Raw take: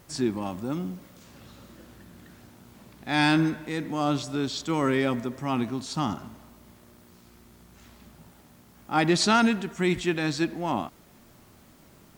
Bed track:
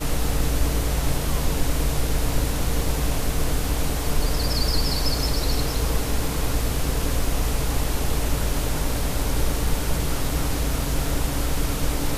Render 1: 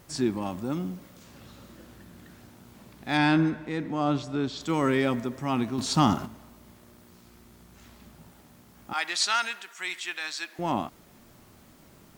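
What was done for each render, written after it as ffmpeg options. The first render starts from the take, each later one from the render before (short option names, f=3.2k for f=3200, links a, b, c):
-filter_complex "[0:a]asettb=1/sr,asplit=3[a][b][c];[a]atrim=end=3.174[d];[b]atrim=start=3.17:end=4.61,asetpts=PTS-STARTPTS,afade=t=in:d=0.004:c=qsin,afade=t=out:st=1.436:d=0.004:c=qsin,lowpass=f=2.5k:p=1[e];[c]atrim=start=4.606[f];[d][e]acrossfade=d=0.004:c1=hsin:c2=qsin[g];[g][f]acrossfade=d=0.004:c1=qsin:c2=hsin,asettb=1/sr,asplit=3[h][i][j];[h]atrim=end=5.784[k];[i]atrim=start=5.78:end=6.26,asetpts=PTS-STARTPTS,afade=t=in:d=0.004:c=qsin,afade=t=out:st=0.476:d=0.004:c=qsin,acontrast=73[l];[j]atrim=start=6.256[m];[k][l]acrossfade=d=0.004:c1=hsin:c2=qsin[n];[n][m]acrossfade=d=0.004:c1=qsin:c2=hsin,asettb=1/sr,asplit=3[o][p][q];[o]atrim=end=8.934[r];[p]atrim=start=8.93:end=10.59,asetpts=PTS-STARTPTS,afade=t=in:d=0.004:c=qsin,afade=t=out:st=1.656:d=0.004:c=qsin,highpass=1.3k[s];[q]atrim=start=10.586[t];[r][s]acrossfade=d=0.004:c1=hsin:c2=qsin[u];[u][t]acrossfade=d=0.004:c1=qsin:c2=hsin"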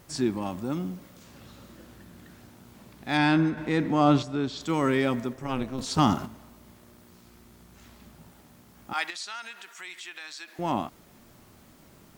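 -filter_complex "[0:a]asettb=1/sr,asplit=3[a][b][c];[a]atrim=end=3.574[d];[b]atrim=start=3.57:end=4.23,asetpts=PTS-STARTPTS,afade=t=in:d=0.004:c=qsin,afade=t=out:st=0.656:d=0.004:c=qsin,acontrast=49[e];[c]atrim=start=4.226[f];[d][e]acrossfade=d=0.004:c1=hsin:c2=qsin[g];[g][f]acrossfade=d=0.004:c1=qsin:c2=hsin,asettb=1/sr,asplit=3[h][i][j];[h]atrim=end=5.334[k];[i]atrim=start=5.33:end=5.99,asetpts=PTS-STARTPTS,afade=t=in:d=0.004:c=qsin,afade=t=out:st=0.656:d=0.004:c=qsin,tremolo=f=260:d=0.75[l];[j]atrim=start=5.986[m];[k][l]acrossfade=d=0.004:c1=hsin:c2=qsin[n];[n][m]acrossfade=d=0.004:c1=qsin:c2=hsin,asettb=1/sr,asplit=3[o][p][q];[o]atrim=end=9.104[r];[p]atrim=start=9.1:end=10.48,asetpts=PTS-STARTPTS,afade=t=in:d=0.004:c=qsin,afade=t=out:st=1.376:d=0.004:c=qsin,acompressor=threshold=-40dB:ratio=2.5:attack=3.2:release=140:knee=1:detection=peak[s];[q]atrim=start=10.476[t];[r][s]acrossfade=d=0.004:c1=hsin:c2=qsin[u];[u][t]acrossfade=d=0.004:c1=qsin:c2=hsin"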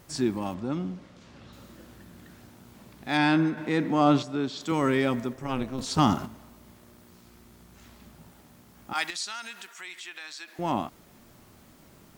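-filter_complex "[0:a]asettb=1/sr,asplit=3[a][b][c];[a]atrim=end=0.544[d];[b]atrim=start=0.54:end=1.53,asetpts=PTS-STARTPTS,afade=t=in:d=0.004:c=qsin,afade=t=out:st=0.986:d=0.004:c=qsin,lowpass=5.1k[e];[c]atrim=start=1.526[f];[d][e]acrossfade=d=0.004:c1=hsin:c2=qsin[g];[g][f]acrossfade=d=0.004:c1=qsin:c2=hsin,asettb=1/sr,asplit=3[h][i][j];[h]atrim=end=3.084[k];[i]atrim=start=3.08:end=4.72,asetpts=PTS-STARTPTS,afade=t=in:d=0.004:c=qsin,afade=t=out:st=1.636:d=0.004:c=qsin,highpass=140[l];[j]atrim=start=4.716[m];[k][l]acrossfade=d=0.004:c1=hsin:c2=qsin[n];[n][m]acrossfade=d=0.004:c1=qsin:c2=hsin,asettb=1/sr,asplit=3[o][p][q];[o]atrim=end=8.954[r];[p]atrim=start=8.95:end=9.67,asetpts=PTS-STARTPTS,afade=t=in:d=0.004:c=qsin,afade=t=out:st=0.716:d=0.004:c=qsin,bass=f=250:g=11,treble=f=4k:g=6[s];[q]atrim=start=9.666[t];[r][s]acrossfade=d=0.004:c1=hsin:c2=qsin[u];[u][t]acrossfade=d=0.004:c1=qsin:c2=hsin"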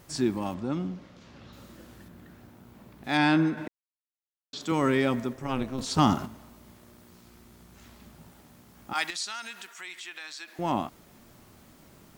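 -filter_complex "[0:a]asettb=1/sr,asplit=3[a][b][c];[a]atrim=end=0.874[d];[b]atrim=start=0.87:end=1.57,asetpts=PTS-STARTPTS,afade=t=in:d=0.004:c=qsin,afade=t=out:st=0.696:d=0.004:c=qsin,equalizer=f=8.6k:t=o:w=0.42:g=-7[e];[c]atrim=start=1.566[f];[d][e]acrossfade=d=0.004:c1=hsin:c2=qsin[g];[g][f]acrossfade=d=0.004:c1=qsin:c2=hsin,asettb=1/sr,asplit=3[h][i][j];[h]atrim=end=2.084[k];[i]atrim=start=2.08:end=3.04,asetpts=PTS-STARTPTS,afade=t=in:d=0.004:c=qsin,afade=t=out:st=0.956:d=0.004:c=qsin,equalizer=f=7k:t=o:w=2.6:g=-8[l];[j]atrim=start=3.036[m];[k][l]acrossfade=d=0.004:c1=hsin:c2=qsin[n];[n][m]acrossfade=d=0.004:c1=qsin:c2=hsin,asplit=3[o][p][q];[o]atrim=end=3.68,asetpts=PTS-STARTPTS,afade=t=out:st=3.676:d=0.004:c=hsin[r];[p]atrim=start=3.68:end=4.53,asetpts=PTS-STARTPTS,volume=0[s];[q]atrim=start=4.53,asetpts=PTS-STARTPTS,afade=t=in:d=0.004:c=hsin[t];[r][s][t]concat=n=3:v=0:a=1"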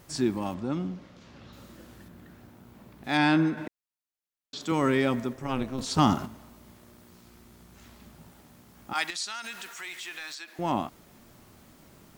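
-filter_complex "[0:a]asettb=1/sr,asplit=3[a][b][c];[a]atrim=end=9.444[d];[b]atrim=start=9.44:end=10.35,asetpts=PTS-STARTPTS,afade=t=in:d=0.004:c=qsin,afade=t=out:st=0.906:d=0.004:c=qsin,aeval=exprs='val(0)+0.5*0.00596*sgn(val(0))':c=same[e];[c]atrim=start=10.346[f];[d][e]acrossfade=d=0.004:c1=hsin:c2=qsin[g];[g][f]acrossfade=d=0.004:c1=qsin:c2=hsin"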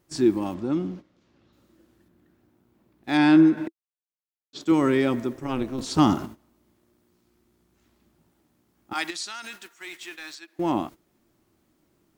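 -af "agate=range=-15dB:threshold=-40dB:ratio=16:detection=peak,equalizer=f=330:w=3.5:g=10.5"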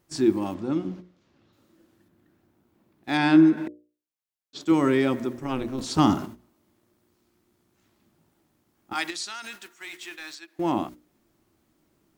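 -af "bandreject=f=60:t=h:w=6,bandreject=f=120:t=h:w=6,bandreject=f=180:t=h:w=6,bandreject=f=240:t=h:w=6,bandreject=f=300:t=h:w=6,bandreject=f=360:t=h:w=6,bandreject=f=420:t=h:w=6,bandreject=f=480:t=h:w=6,bandreject=f=540:t=h:w=6,bandreject=f=600:t=h:w=6"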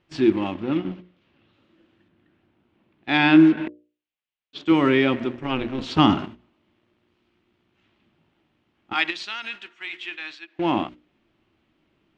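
-filter_complex "[0:a]asplit=2[a][b];[b]acrusher=bits=4:mix=0:aa=0.5,volume=-10dB[c];[a][c]amix=inputs=2:normalize=0,lowpass=f=2.9k:t=q:w=2.7"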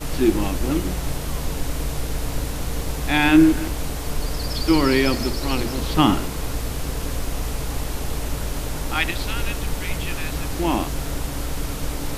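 -filter_complex "[1:a]volume=-3dB[a];[0:a][a]amix=inputs=2:normalize=0"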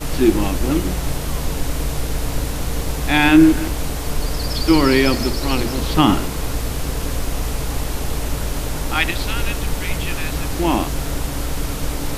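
-af "volume=3.5dB,alimiter=limit=-1dB:level=0:latency=1"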